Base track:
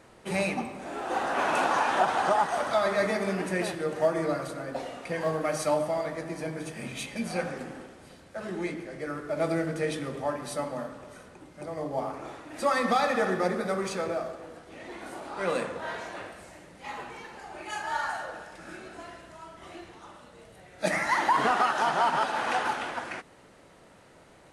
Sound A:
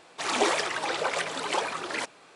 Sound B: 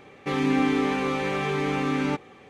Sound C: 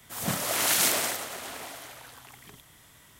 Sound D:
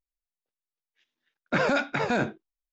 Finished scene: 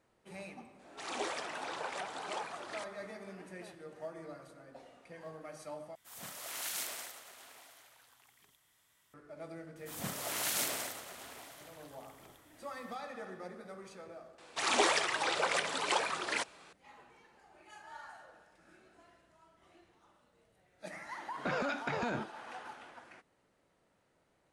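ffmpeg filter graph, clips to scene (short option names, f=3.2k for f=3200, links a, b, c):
-filter_complex "[1:a]asplit=2[a][b];[3:a]asplit=2[c][d];[0:a]volume=-19dB[e];[c]lowshelf=f=430:g=-10.5[f];[b]equalizer=f=230:w=0.33:g=-4[g];[4:a]acompressor=threshold=-27dB:ratio=6:attack=3.2:release=140:knee=1:detection=peak[h];[e]asplit=2[i][j];[i]atrim=end=5.954[k];[f]atrim=end=3.19,asetpts=PTS-STARTPTS,volume=-15dB[l];[j]atrim=start=9.136[m];[a]atrim=end=2.35,asetpts=PTS-STARTPTS,volume=-13.5dB,afade=t=in:d=0.004:c=hsin,afade=t=out:st=2.346:d=0.004:c=hsin,adelay=790[n];[d]atrim=end=3.19,asetpts=PTS-STARTPTS,volume=-10.5dB,afade=t=in:d=0.004:c=hsin,afade=t=out:st=3.186:d=0.004:c=hsin,adelay=9760[o];[g]atrim=end=2.35,asetpts=PTS-STARTPTS,volume=-2dB,afade=t=in:d=0.004:c=hsin,afade=t=out:st=2.346:d=0.004:c=hsin,adelay=14380[p];[h]atrim=end=2.72,asetpts=PTS-STARTPTS,volume=-4dB,afade=t=in:d=0.004:c=hsin,afade=t=out:st=2.716:d=0.004:c=hsin,adelay=19930[q];[k][l]acrossfade=d=0.004:c1=hsin:c2=hsin[r];[r][m]acrossfade=d=0.004:c1=hsin:c2=hsin[s];[s][n][o][p][q]amix=inputs=5:normalize=0"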